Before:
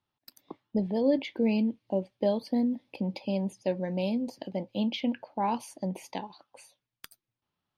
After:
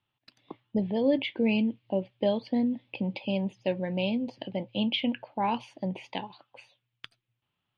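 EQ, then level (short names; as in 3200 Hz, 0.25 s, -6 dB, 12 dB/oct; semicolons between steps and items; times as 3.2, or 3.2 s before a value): synth low-pass 3000 Hz, resonance Q 2.6; bell 120 Hz +12 dB 0.27 oct; 0.0 dB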